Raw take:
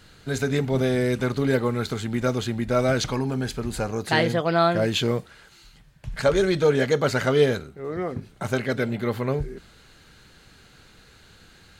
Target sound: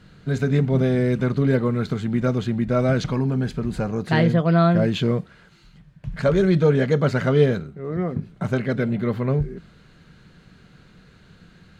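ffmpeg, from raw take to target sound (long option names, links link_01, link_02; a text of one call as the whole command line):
ffmpeg -i in.wav -af "lowpass=frequency=2300:poles=1,equalizer=frequency=170:width=1.8:gain=11,bandreject=frequency=830:width=12" out.wav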